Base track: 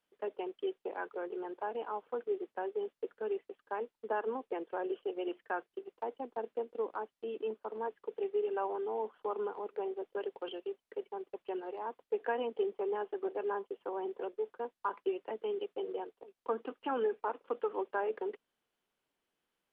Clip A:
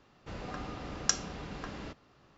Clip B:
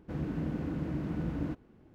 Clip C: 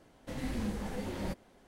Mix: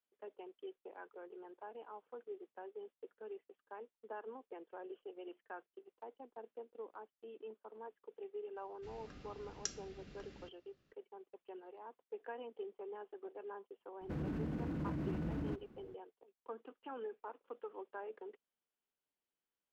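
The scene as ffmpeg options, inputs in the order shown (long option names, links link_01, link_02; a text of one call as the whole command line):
ffmpeg -i bed.wav -i cue0.wav -i cue1.wav -filter_complex "[0:a]volume=-12.5dB[link_01];[1:a]equalizer=frequency=910:width_type=o:width=0.83:gain=-14.5[link_02];[2:a]alimiter=level_in=7.5dB:limit=-24dB:level=0:latency=1:release=30,volume=-7.5dB[link_03];[link_02]atrim=end=2.37,asetpts=PTS-STARTPTS,volume=-12.5dB,afade=type=in:duration=0.004:curve=hsin,afade=type=out:start_time=2.366:duration=0.004:curve=hsin,adelay=8560[link_04];[link_03]atrim=end=1.94,asetpts=PTS-STARTPTS,volume=-1dB,afade=type=in:duration=0.004:curve=hsin,afade=type=out:start_time=1.936:duration=0.004:curve=hsin,adelay=14010[link_05];[link_01][link_04][link_05]amix=inputs=3:normalize=0" out.wav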